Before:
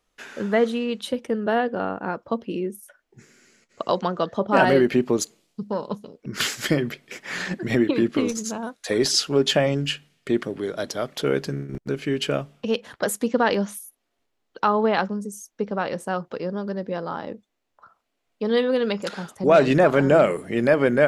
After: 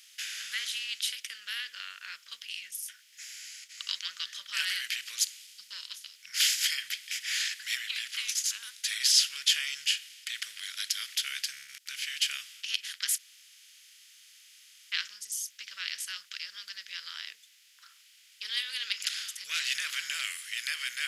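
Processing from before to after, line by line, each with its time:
13.18–14.92 s: room tone
17.13–19.03 s: small resonant body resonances 410/880 Hz, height 13 dB
whole clip: spectral levelling over time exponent 0.6; inverse Chebyshev high-pass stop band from 830 Hz, stop band 50 dB; treble shelf 11 kHz +7 dB; trim -3.5 dB

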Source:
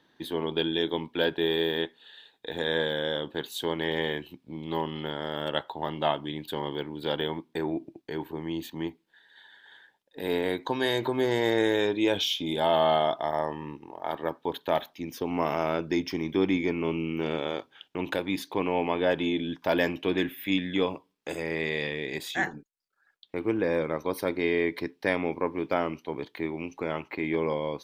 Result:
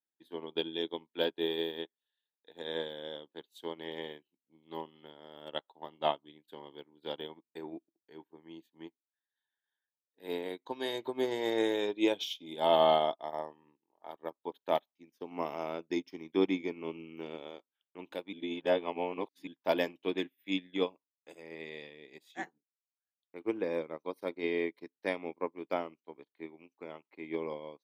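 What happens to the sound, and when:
18.33–19.47 s: reverse
whole clip: high-pass 210 Hz 12 dB/octave; dynamic bell 1.6 kHz, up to -7 dB, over -48 dBFS, Q 2.8; upward expansion 2.5:1, over -47 dBFS

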